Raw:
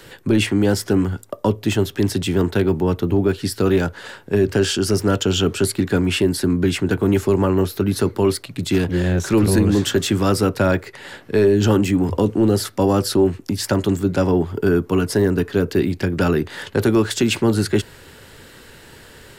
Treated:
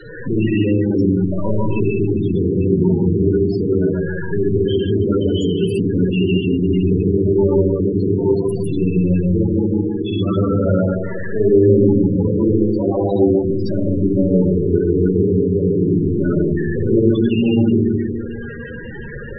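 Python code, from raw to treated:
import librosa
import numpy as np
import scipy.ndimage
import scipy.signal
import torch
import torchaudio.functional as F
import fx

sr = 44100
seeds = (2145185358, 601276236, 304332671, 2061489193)

p1 = x + 0.5 * 10.0 ** (-21.5 / 20.0) * np.sign(x)
p2 = fx.level_steps(p1, sr, step_db=12)
p3 = p1 + (p2 * librosa.db_to_amplitude(-3.0))
p4 = fx.power_curve(p3, sr, exponent=2.0, at=(9.2, 10.06))
p5 = p4 + fx.echo_feedback(p4, sr, ms=146, feedback_pct=50, wet_db=-3, dry=0)
p6 = fx.rev_schroeder(p5, sr, rt60_s=1.3, comb_ms=38, drr_db=-3.5)
p7 = fx.spec_topn(p6, sr, count=16)
y = p7 * librosa.db_to_amplitude(-8.0)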